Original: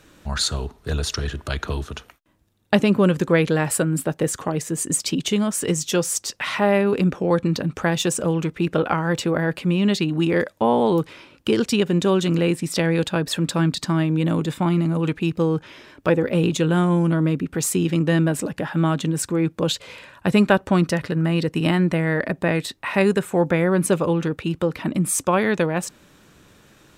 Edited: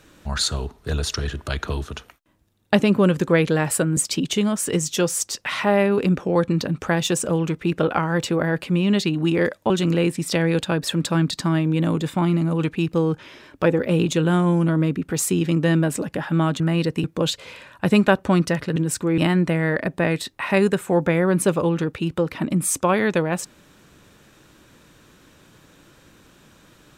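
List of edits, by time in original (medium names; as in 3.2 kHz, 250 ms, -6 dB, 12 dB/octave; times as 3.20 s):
3.97–4.92 s: delete
10.65–12.14 s: delete
19.04–19.46 s: swap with 21.18–21.62 s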